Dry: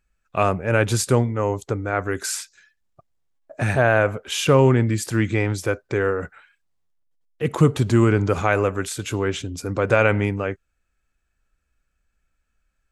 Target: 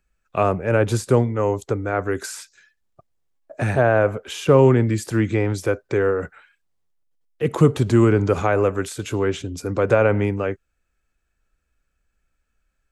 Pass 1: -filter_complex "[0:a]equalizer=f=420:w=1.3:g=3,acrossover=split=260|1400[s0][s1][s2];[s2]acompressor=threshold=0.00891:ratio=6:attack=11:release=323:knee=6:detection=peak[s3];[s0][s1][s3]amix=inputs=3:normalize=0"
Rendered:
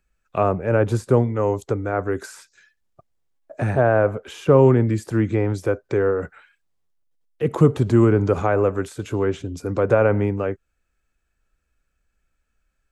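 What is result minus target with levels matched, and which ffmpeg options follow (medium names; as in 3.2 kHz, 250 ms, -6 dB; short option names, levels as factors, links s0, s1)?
compression: peak gain reduction +9 dB
-filter_complex "[0:a]equalizer=f=420:w=1.3:g=3,acrossover=split=260|1400[s0][s1][s2];[s2]acompressor=threshold=0.0299:ratio=6:attack=11:release=323:knee=6:detection=peak[s3];[s0][s1][s3]amix=inputs=3:normalize=0"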